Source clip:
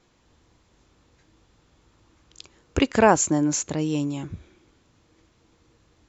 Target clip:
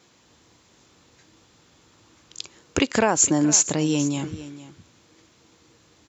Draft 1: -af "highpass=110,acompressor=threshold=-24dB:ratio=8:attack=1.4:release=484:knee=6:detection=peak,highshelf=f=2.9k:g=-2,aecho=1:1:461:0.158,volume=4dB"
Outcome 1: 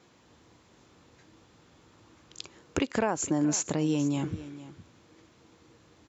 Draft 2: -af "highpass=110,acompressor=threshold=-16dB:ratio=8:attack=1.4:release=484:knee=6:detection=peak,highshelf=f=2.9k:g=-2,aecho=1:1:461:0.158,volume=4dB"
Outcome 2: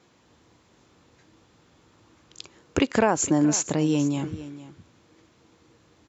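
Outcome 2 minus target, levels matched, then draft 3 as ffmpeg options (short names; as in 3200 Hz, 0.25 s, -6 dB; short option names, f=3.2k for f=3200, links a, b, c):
8000 Hz band -5.0 dB
-af "highpass=110,acompressor=threshold=-16dB:ratio=8:attack=1.4:release=484:knee=6:detection=peak,highshelf=f=2.9k:g=7.5,aecho=1:1:461:0.158,volume=4dB"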